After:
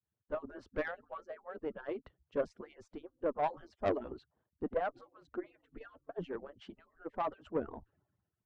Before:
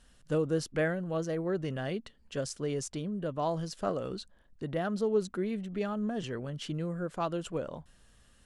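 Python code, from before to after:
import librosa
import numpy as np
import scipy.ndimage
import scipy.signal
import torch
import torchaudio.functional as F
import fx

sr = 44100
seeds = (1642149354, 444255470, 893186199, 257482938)

y = fx.hpss_only(x, sr, part='percussive')
y = scipy.signal.sosfilt(scipy.signal.butter(2, 1200.0, 'lowpass', fs=sr, output='sos'), y)
y = fx.tube_stage(y, sr, drive_db=29.0, bias=0.25)
y = fx.band_widen(y, sr, depth_pct=70)
y = y * 10.0 ** (2.5 / 20.0)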